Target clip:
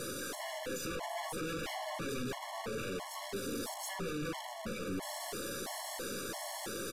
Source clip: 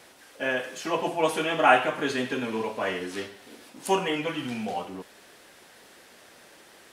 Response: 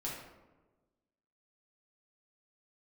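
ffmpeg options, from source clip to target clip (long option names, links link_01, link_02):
-filter_complex "[0:a]equalizer=frequency=2500:width=1.9:gain=-12.5,acompressor=threshold=-39dB:ratio=5,aeval=exprs='0.0422*sin(PI/2*4.47*val(0)/0.0422)':channel_layout=same,aeval=exprs='(tanh(224*val(0)+0.1)-tanh(0.1))/224':channel_layout=same,asplit=2[link_01][link_02];[1:a]atrim=start_sample=2205,lowpass=frequency=1700:width=0.5412,lowpass=frequency=1700:width=1.3066[link_03];[link_02][link_03]afir=irnorm=-1:irlink=0,volume=-11dB[link_04];[link_01][link_04]amix=inputs=2:normalize=0,aresample=32000,aresample=44100,afftfilt=real='re*gt(sin(2*PI*1.5*pts/sr)*(1-2*mod(floor(b*sr/1024/570),2)),0)':imag='im*gt(sin(2*PI*1.5*pts/sr)*(1-2*mod(floor(b*sr/1024/570),2)),0)':win_size=1024:overlap=0.75,volume=10dB"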